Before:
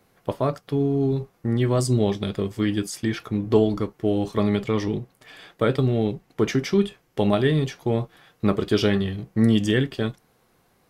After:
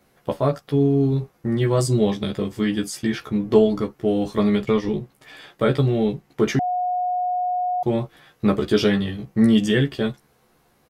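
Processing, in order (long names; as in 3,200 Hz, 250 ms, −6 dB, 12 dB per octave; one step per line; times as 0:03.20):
0:04.59–0:04.99: transient designer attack +3 dB, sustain −8 dB
double-tracking delay 14 ms −3 dB
0:06.59–0:07.83: beep over 724 Hz −20 dBFS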